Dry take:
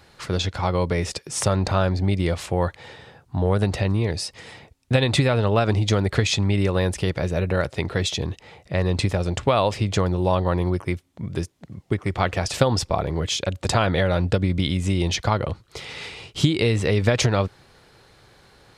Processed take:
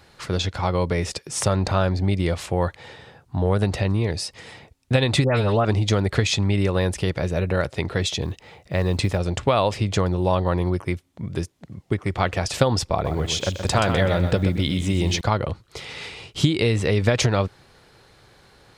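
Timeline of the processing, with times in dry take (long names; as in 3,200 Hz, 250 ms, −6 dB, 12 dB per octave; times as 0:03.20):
0:05.24–0:05.65: all-pass dispersion highs, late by 137 ms, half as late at 2,300 Hz
0:08.23–0:09.18: log-companded quantiser 8 bits
0:12.92–0:15.21: feedback echo at a low word length 126 ms, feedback 35%, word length 8 bits, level −8 dB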